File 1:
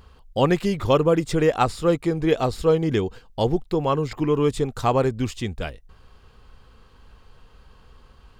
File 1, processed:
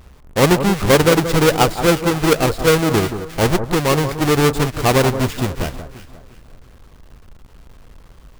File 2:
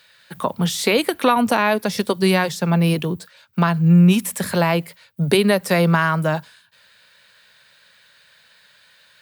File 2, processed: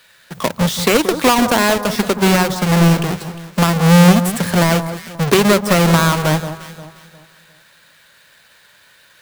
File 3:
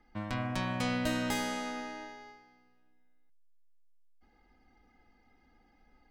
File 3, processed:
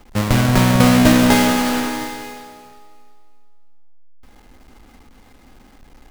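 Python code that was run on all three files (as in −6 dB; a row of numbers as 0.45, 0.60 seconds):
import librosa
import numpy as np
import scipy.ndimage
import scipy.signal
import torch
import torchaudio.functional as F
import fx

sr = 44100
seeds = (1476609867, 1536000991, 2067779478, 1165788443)

y = fx.halfwave_hold(x, sr)
y = fx.echo_alternate(y, sr, ms=177, hz=1400.0, feedback_pct=56, wet_db=-9.5)
y = y * 10.0 ** (-3 / 20.0) / np.max(np.abs(y))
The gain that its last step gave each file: +1.5, −0.5, +14.0 decibels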